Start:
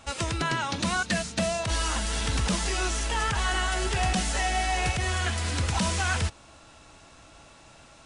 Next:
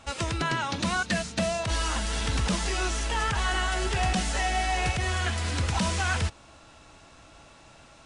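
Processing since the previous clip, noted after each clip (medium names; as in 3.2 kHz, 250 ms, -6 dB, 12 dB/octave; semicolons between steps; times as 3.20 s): treble shelf 8.8 kHz -6.5 dB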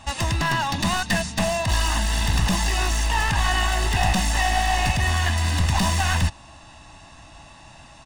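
one-sided wavefolder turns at -25.5 dBFS; comb 1.1 ms, depth 66%; trim +4.5 dB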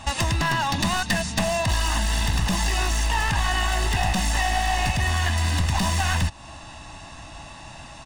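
compression 2.5:1, threshold -27 dBFS, peak gain reduction 8 dB; trim +5 dB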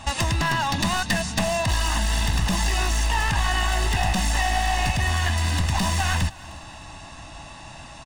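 feedback delay 308 ms, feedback 42%, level -21.5 dB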